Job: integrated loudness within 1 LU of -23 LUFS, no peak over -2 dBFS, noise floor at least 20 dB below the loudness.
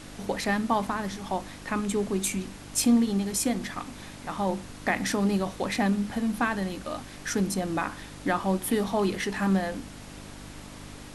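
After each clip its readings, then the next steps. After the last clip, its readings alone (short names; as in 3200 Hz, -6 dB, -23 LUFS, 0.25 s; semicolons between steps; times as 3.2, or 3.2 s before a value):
hum 50 Hz; harmonics up to 300 Hz; hum level -47 dBFS; noise floor -44 dBFS; noise floor target -48 dBFS; loudness -28.0 LUFS; peak -11.5 dBFS; loudness target -23.0 LUFS
-> de-hum 50 Hz, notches 6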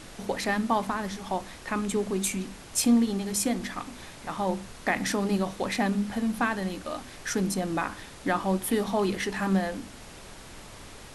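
hum none; noise floor -46 dBFS; noise floor target -49 dBFS
-> noise print and reduce 6 dB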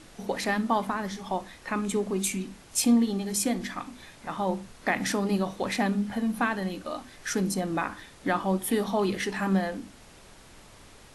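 noise floor -52 dBFS; loudness -28.5 LUFS; peak -11.5 dBFS; loudness target -23.0 LUFS
-> gain +5.5 dB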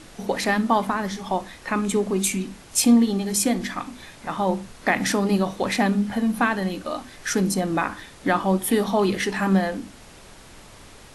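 loudness -23.0 LUFS; peak -6.0 dBFS; noise floor -46 dBFS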